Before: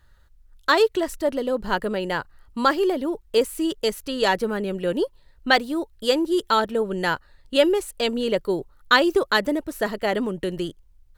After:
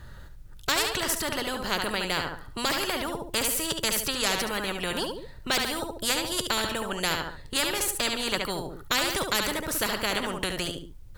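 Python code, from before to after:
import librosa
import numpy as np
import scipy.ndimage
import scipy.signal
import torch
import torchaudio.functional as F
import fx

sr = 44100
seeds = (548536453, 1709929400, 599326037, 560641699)

y = fx.low_shelf(x, sr, hz=390.0, db=10.0)
y = fx.echo_feedback(y, sr, ms=71, feedback_pct=21, wet_db=-9.5)
y = fx.spectral_comp(y, sr, ratio=4.0)
y = y * librosa.db_to_amplitude(-6.5)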